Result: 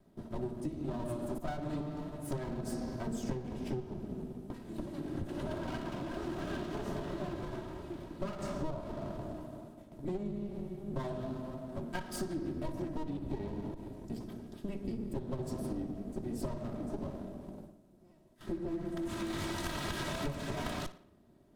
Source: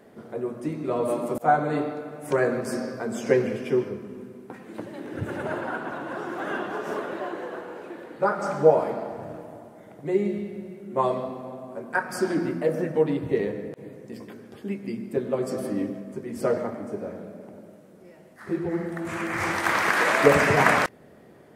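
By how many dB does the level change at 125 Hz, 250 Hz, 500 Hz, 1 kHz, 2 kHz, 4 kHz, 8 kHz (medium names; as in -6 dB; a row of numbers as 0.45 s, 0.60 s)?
-5.5 dB, -8.0 dB, -16.0 dB, -17.5 dB, -20.5 dB, -8.0 dB, -9.5 dB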